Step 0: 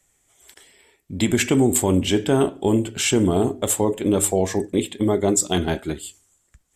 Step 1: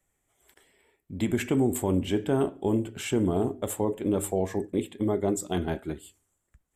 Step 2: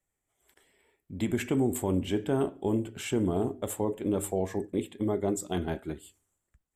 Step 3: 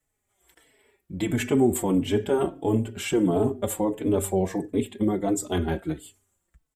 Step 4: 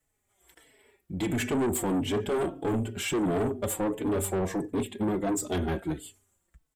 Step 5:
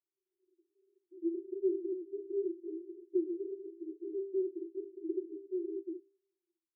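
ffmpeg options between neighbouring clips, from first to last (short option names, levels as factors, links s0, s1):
-af "equalizer=f=5500:t=o:w=1.9:g=-11,volume=0.473"
-af "dynaudnorm=f=140:g=7:m=2,volume=0.376"
-filter_complex "[0:a]asplit=2[s0][s1];[s1]adelay=4.1,afreqshift=-1.5[s2];[s0][s2]amix=inputs=2:normalize=1,volume=2.66"
-af "asoftclip=type=tanh:threshold=0.0596,volume=1.12"
-af "asuperpass=centerf=360:order=12:qfactor=4.9,volume=0.891"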